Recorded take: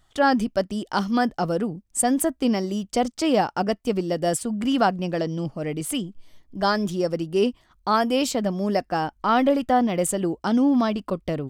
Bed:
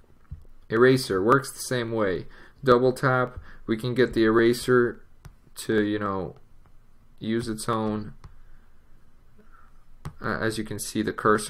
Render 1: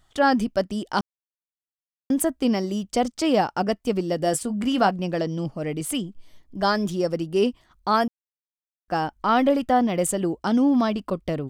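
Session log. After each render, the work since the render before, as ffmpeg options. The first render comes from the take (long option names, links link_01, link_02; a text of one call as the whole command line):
ffmpeg -i in.wav -filter_complex "[0:a]asettb=1/sr,asplit=3[link_01][link_02][link_03];[link_01]atrim=end=4.174[link_04];[link_02]atrim=start=4.17:end=4.91,asetpts=PTS-STARTPTS,afade=type=in:duration=0.004:curve=qsin,afade=type=out:start_time=0.736:duration=0.004:curve=qsin,asplit=2[link_05][link_06];[link_06]adelay=20,volume=-12dB[link_07];[link_05][link_07]amix=inputs=2:normalize=0,atrim=end_sample=32634[link_08];[link_03]atrim=start=4.906[link_09];[link_04][link_08]acrossfade=duration=0.004:curve1=hsin:curve2=qsin[link_10];[link_10][link_09]acrossfade=duration=0.004:curve1=qsin:curve2=hsin,asplit=5[link_11][link_12][link_13][link_14][link_15];[link_11]atrim=end=1.01,asetpts=PTS-STARTPTS,afade=type=out:start_time=1.006:duration=0.004:curve=hsin[link_16];[link_12]atrim=start=1.01:end=2.1,asetpts=PTS-STARTPTS,volume=0[link_17];[link_13]atrim=start=2.1:end=8.08,asetpts=PTS-STARTPTS,afade=type=in:duration=0.004:curve=hsin,afade=type=out:start_time=5.976:duration=0.004:curve=hsin[link_18];[link_14]atrim=start=8.08:end=8.88,asetpts=PTS-STARTPTS,volume=0[link_19];[link_15]atrim=start=8.88,asetpts=PTS-STARTPTS,afade=type=in:duration=0.004:curve=hsin[link_20];[link_16][link_17][link_18][link_19][link_20]concat=n=5:v=0:a=1" out.wav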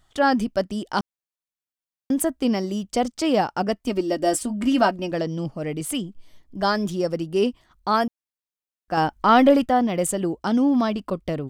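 ffmpeg -i in.wav -filter_complex "[0:a]asettb=1/sr,asplit=3[link_01][link_02][link_03];[link_01]atrim=end=3.874[link_04];[link_02]atrim=start=3.87:end=5.12,asetpts=PTS-STARTPTS,afade=type=in:duration=0.004:curve=qsin,afade=type=out:start_time=1.246:duration=0.004:curve=qsin,aecho=1:1:3.2:0.65,atrim=end_sample=55125[link_05];[link_03]atrim=start=5.116[link_06];[link_04][link_05]acrossfade=duration=0.004:curve1=hsin:curve2=qsin[link_07];[link_07][link_06]acrossfade=duration=0.004:curve1=qsin:curve2=hsin,asettb=1/sr,asplit=3[link_08][link_09][link_10];[link_08]atrim=end=8.974[link_11];[link_09]atrim=start=8.97:end=9.66,asetpts=PTS-STARTPTS,afade=type=in:duration=0.004:curve=qsin,afade=type=out:start_time=0.686:duration=0.004:curve=qsin,acontrast=27[link_12];[link_10]atrim=start=9.656[link_13];[link_11][link_12]acrossfade=duration=0.004:curve1=hsin:curve2=qsin[link_14];[link_14][link_13]acrossfade=duration=0.004:curve1=qsin:curve2=hsin" out.wav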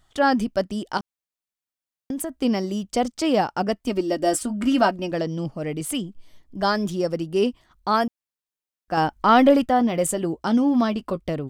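ffmpeg -i in.wav -filter_complex "[0:a]asettb=1/sr,asplit=3[link_01][link_02][link_03];[link_01]atrim=end=0.974[link_04];[link_02]atrim=start=0.97:end=2.34,asetpts=PTS-STARTPTS,afade=type=in:duration=0.004:curve=qsin,afade=type=out:start_time=1.366:duration=0.004:curve=qsin,acompressor=threshold=-25dB:ratio=6:attack=3.2:release=140:knee=1:detection=peak[link_05];[link_03]atrim=start=2.336[link_06];[link_04][link_05]acrossfade=duration=0.004:curve1=hsin:curve2=qsin[link_07];[link_07][link_06]acrossfade=duration=0.004:curve1=qsin:curve2=hsin,asettb=1/sr,asplit=3[link_08][link_09][link_10];[link_08]atrim=end=4.344[link_11];[link_09]atrim=start=4.34:end=4.76,asetpts=PTS-STARTPTS,afade=type=in:duration=0.004:curve=qsin,afade=type=out:start_time=0.416:duration=0.004:curve=qsin,equalizer=frequency=1400:width=6:gain=9[link_12];[link_10]atrim=start=4.756[link_13];[link_11][link_12]acrossfade=duration=0.004:curve1=hsin:curve2=qsin[link_14];[link_14][link_13]acrossfade=duration=0.004:curve1=qsin:curve2=hsin,asettb=1/sr,asplit=3[link_15][link_16][link_17];[link_15]atrim=end=9.784[link_18];[link_16]atrim=start=9.78:end=11.18,asetpts=PTS-STARTPTS,afade=type=in:duration=0.004:curve=qsin,afade=type=out:start_time=1.396:duration=0.004:curve=qsin,asplit=2[link_19][link_20];[link_20]adelay=13,volume=-11dB[link_21];[link_19][link_21]amix=inputs=2:normalize=0,atrim=end_sample=61740[link_22];[link_17]atrim=start=11.176[link_23];[link_18][link_22]acrossfade=duration=0.004:curve1=hsin:curve2=qsin[link_24];[link_24][link_23]acrossfade=duration=0.004:curve1=qsin:curve2=hsin" out.wav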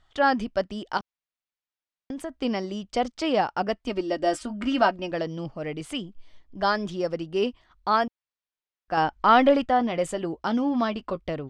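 ffmpeg -i in.wav -af "lowpass=4300,equalizer=frequency=190:width=0.5:gain=-6.5" out.wav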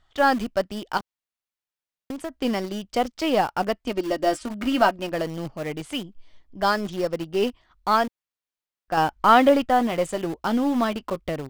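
ffmpeg -i in.wav -filter_complex "[0:a]aeval=exprs='0.473*(cos(1*acos(clip(val(0)/0.473,-1,1)))-cos(1*PI/2))+0.0075*(cos(3*acos(clip(val(0)/0.473,-1,1)))-cos(3*PI/2))+0.00841*(cos(8*acos(clip(val(0)/0.473,-1,1)))-cos(8*PI/2))':channel_layout=same,asplit=2[link_01][link_02];[link_02]acrusher=bits=4:mix=0:aa=0.000001,volume=-10.5dB[link_03];[link_01][link_03]amix=inputs=2:normalize=0" out.wav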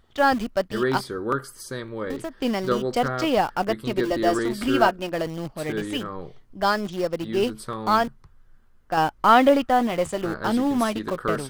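ffmpeg -i in.wav -i bed.wav -filter_complex "[1:a]volume=-6dB[link_01];[0:a][link_01]amix=inputs=2:normalize=0" out.wav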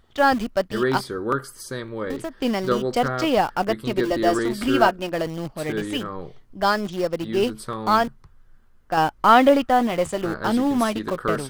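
ffmpeg -i in.wav -af "volume=1.5dB" out.wav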